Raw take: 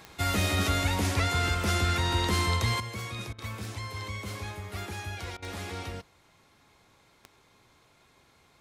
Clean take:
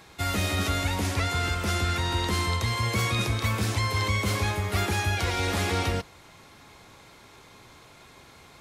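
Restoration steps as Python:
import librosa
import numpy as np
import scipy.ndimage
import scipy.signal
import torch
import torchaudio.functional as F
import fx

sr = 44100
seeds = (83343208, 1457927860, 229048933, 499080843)

y = fx.fix_declick_ar(x, sr, threshold=10.0)
y = fx.fix_interpolate(y, sr, at_s=(3.33, 5.37), length_ms=52.0)
y = fx.gain(y, sr, db=fx.steps((0.0, 0.0), (2.8, 11.0)))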